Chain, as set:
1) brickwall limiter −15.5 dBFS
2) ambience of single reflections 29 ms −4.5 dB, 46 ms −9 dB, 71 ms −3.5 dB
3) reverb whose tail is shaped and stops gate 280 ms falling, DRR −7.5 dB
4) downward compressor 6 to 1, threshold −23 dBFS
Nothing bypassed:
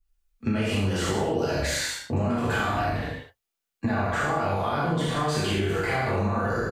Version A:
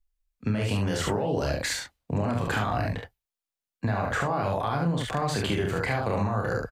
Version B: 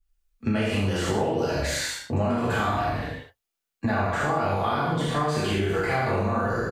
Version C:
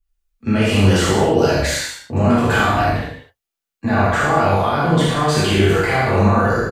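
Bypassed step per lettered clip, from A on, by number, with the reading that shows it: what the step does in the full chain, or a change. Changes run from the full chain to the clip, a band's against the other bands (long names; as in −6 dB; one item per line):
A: 3, change in momentary loudness spread +2 LU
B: 1, average gain reduction 3.0 dB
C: 4, average gain reduction 8.5 dB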